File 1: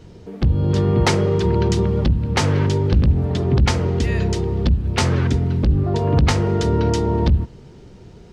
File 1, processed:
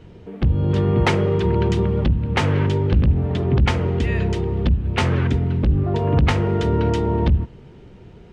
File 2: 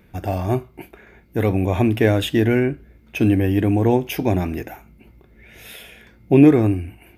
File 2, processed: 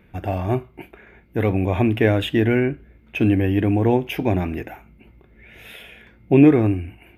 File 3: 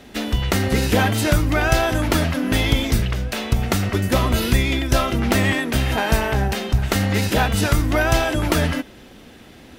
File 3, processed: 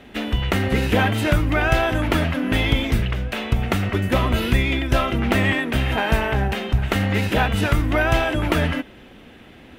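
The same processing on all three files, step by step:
high shelf with overshoot 3,800 Hz −7.5 dB, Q 1.5
level −1 dB

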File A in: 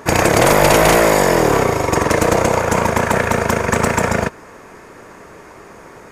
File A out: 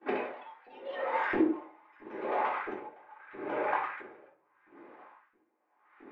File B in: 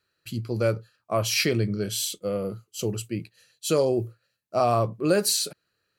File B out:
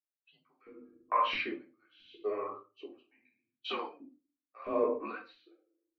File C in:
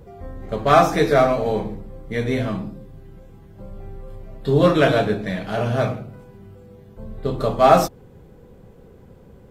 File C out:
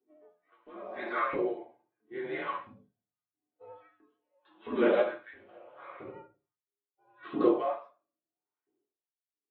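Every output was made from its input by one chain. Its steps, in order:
noise gate −39 dBFS, range −23 dB
noise reduction from a noise print of the clip's start 17 dB
low-shelf EQ 160 Hz +7.5 dB
downward compressor 5 to 1, threshold −28 dBFS
single-sideband voice off tune −89 Hz 210–3,300 Hz
auto-filter high-pass saw up 1.5 Hz 270–1,700 Hz
rectangular room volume 290 cubic metres, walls furnished, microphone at 3.5 metres
pitch vibrato 13 Hz 27 cents
tremolo with a sine in dB 0.81 Hz, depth 28 dB
level −2 dB

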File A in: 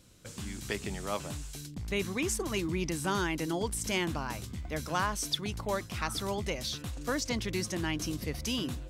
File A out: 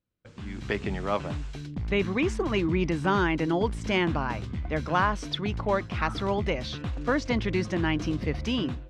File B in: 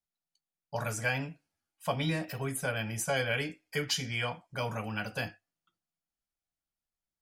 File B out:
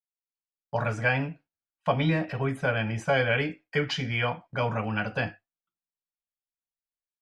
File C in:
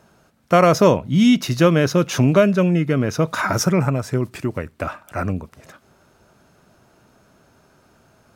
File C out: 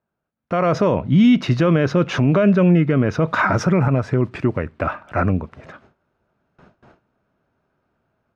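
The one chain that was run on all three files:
low-pass filter 2,600 Hz 12 dB per octave
noise gate with hold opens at −44 dBFS
brickwall limiter −12.5 dBFS
automatic gain control gain up to 11.5 dB
level −4.5 dB

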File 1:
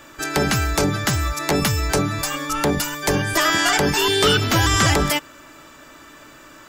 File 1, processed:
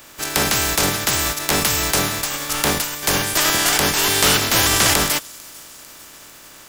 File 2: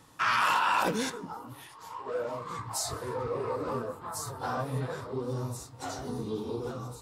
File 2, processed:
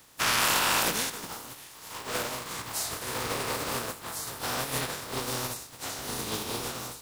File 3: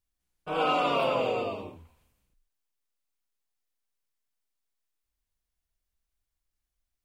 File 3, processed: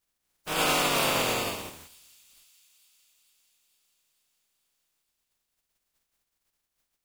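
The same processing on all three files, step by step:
compressing power law on the bin magnitudes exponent 0.35
on a send: delay with a high-pass on its return 448 ms, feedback 63%, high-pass 4,900 Hz, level −21 dB
on the sum: level +1 dB

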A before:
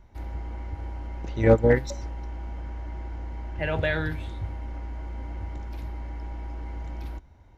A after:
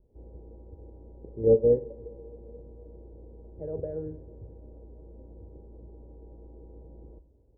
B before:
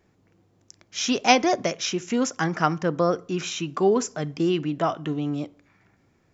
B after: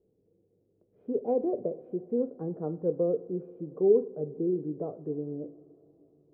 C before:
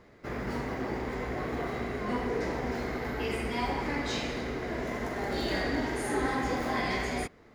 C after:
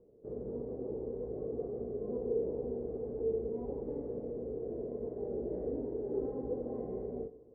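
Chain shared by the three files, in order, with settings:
transistor ladder low-pass 500 Hz, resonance 70%
coupled-rooms reverb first 0.4 s, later 4.3 s, from −18 dB, DRR 11 dB

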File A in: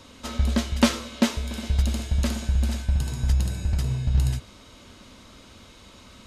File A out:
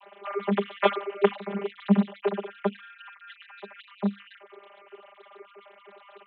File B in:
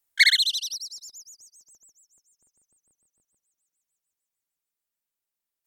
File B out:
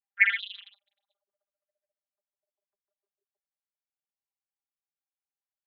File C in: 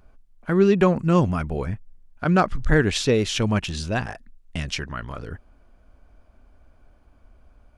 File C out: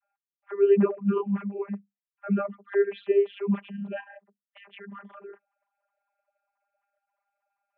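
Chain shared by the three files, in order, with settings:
three sine waves on the formant tracks
channel vocoder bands 32, saw 200 Hz
level −4.5 dB

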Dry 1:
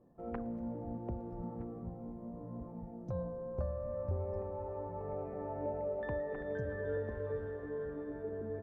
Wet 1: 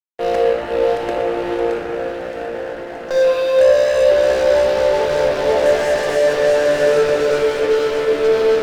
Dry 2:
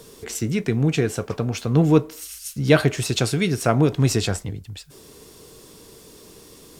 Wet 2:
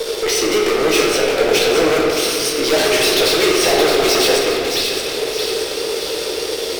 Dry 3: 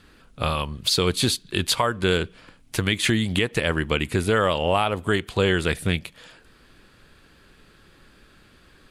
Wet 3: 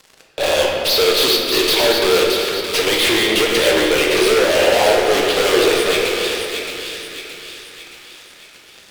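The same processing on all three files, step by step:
high-pass filter 380 Hz 24 dB per octave
in parallel at −2 dB: downward compressor, threshold −39 dBFS
on the sum: Savitzky-Golay smoothing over 15 samples
phaser with its sweep stopped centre 500 Hz, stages 4
fuzz pedal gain 41 dB, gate −50 dBFS
on a send: delay with a high-pass on its return 621 ms, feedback 51%, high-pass 2,000 Hz, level −5 dB
on the sum: rectangular room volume 140 cubic metres, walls hard, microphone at 0.49 metres
level −3.5 dB

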